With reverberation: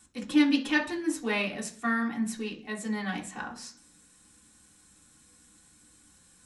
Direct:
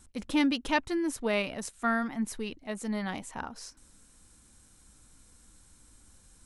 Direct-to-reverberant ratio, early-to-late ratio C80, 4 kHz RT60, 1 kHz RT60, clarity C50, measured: −1.0 dB, 17.5 dB, 0.50 s, 0.40 s, 12.5 dB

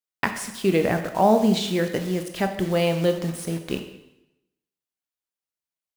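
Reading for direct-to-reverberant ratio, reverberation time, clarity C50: 6.0 dB, 0.90 s, 8.5 dB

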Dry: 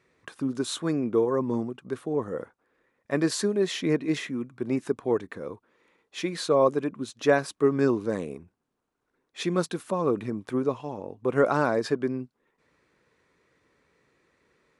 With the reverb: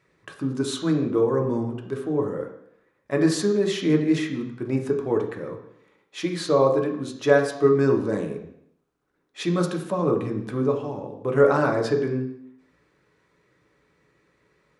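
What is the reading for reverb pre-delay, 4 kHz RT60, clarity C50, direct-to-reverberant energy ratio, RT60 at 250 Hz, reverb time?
3 ms, 0.70 s, 8.0 dB, 2.0 dB, 0.70 s, 0.70 s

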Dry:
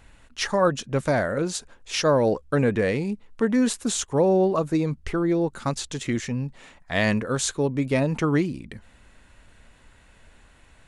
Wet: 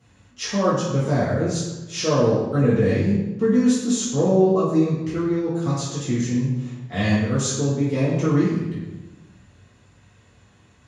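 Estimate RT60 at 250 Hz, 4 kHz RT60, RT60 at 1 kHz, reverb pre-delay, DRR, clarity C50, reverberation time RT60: 1.4 s, 0.80 s, 1.0 s, 3 ms, −9.5 dB, 1.0 dB, 1.1 s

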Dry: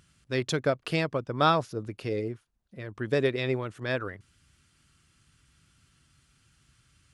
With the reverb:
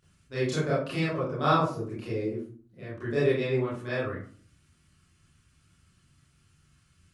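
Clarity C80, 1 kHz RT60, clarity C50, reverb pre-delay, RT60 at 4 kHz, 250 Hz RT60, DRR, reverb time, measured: 7.0 dB, 0.45 s, 2.5 dB, 27 ms, 0.25 s, 0.70 s, −11.0 dB, 0.45 s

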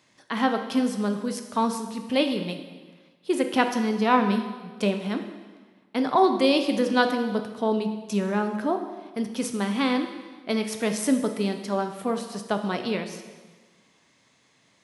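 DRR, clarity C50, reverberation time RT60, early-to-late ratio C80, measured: 5.5 dB, 8.0 dB, 1.4 s, 9.5 dB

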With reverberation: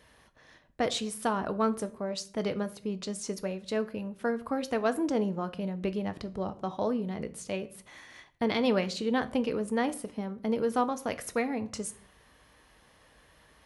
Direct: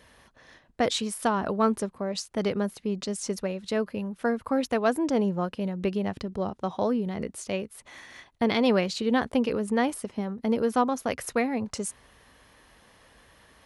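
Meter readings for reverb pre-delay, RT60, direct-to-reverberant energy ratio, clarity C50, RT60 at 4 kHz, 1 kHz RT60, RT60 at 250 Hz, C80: 6 ms, 0.50 s, 11.0 dB, 18.0 dB, 0.35 s, 0.45 s, 0.80 s, 22.0 dB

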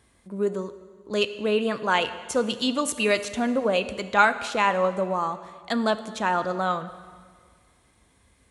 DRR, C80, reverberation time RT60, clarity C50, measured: 11.5 dB, 14.0 dB, 1.8 s, 13.0 dB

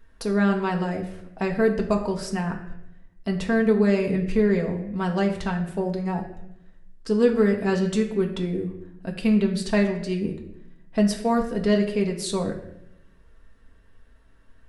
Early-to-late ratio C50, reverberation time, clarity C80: 9.0 dB, 0.80 s, 11.5 dB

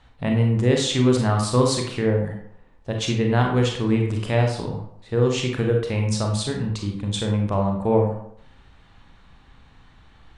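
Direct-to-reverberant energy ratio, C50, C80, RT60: 1.5 dB, 4.5 dB, 8.5 dB, 0.65 s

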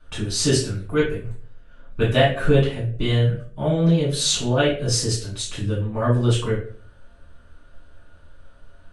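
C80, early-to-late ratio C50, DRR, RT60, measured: 10.5 dB, 5.5 dB, −9.5 dB, 0.50 s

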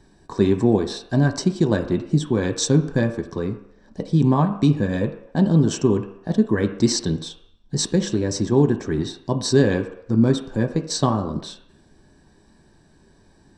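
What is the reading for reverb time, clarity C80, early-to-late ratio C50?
non-exponential decay, 13.0 dB, 11.0 dB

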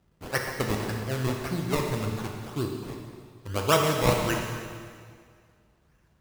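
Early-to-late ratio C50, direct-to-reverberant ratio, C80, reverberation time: 3.0 dB, 1.0 dB, 4.0 dB, 2.0 s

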